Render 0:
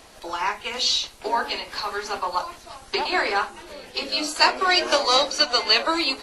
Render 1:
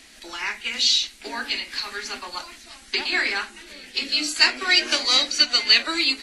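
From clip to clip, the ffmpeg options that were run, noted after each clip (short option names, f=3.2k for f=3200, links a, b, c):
-af "equalizer=f=125:t=o:w=1:g=-12,equalizer=f=250:t=o:w=1:g=9,equalizer=f=500:t=o:w=1:g=-8,equalizer=f=1k:t=o:w=1:g=-9,equalizer=f=2k:t=o:w=1:g=9,equalizer=f=4k:t=o:w=1:g=4,equalizer=f=8k:t=o:w=1:g=6,volume=-3.5dB"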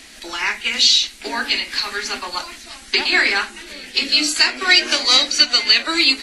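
-af "alimiter=limit=-9dB:level=0:latency=1:release=299,volume=7dB"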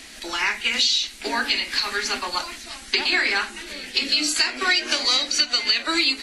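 -af "acompressor=threshold=-18dB:ratio=4"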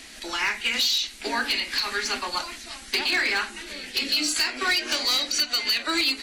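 -af "volume=16dB,asoftclip=hard,volume=-16dB,volume=-2dB"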